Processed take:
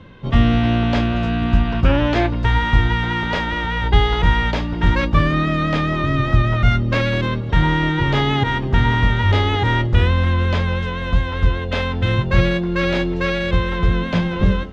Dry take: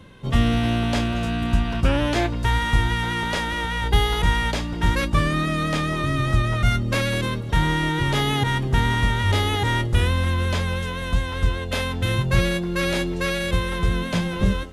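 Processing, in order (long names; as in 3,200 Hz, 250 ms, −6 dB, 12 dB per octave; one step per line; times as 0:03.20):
high-frequency loss of the air 190 metres
hum removal 66.31 Hz, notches 14
level +5 dB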